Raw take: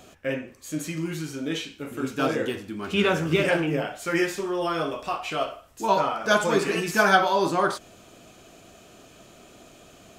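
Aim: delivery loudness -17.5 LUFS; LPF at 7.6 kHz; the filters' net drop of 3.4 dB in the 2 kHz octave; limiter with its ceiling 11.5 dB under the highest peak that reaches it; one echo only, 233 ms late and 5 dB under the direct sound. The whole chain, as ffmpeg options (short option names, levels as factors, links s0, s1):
-af "lowpass=7600,equalizer=f=2000:t=o:g=-5,alimiter=limit=0.106:level=0:latency=1,aecho=1:1:233:0.562,volume=3.76"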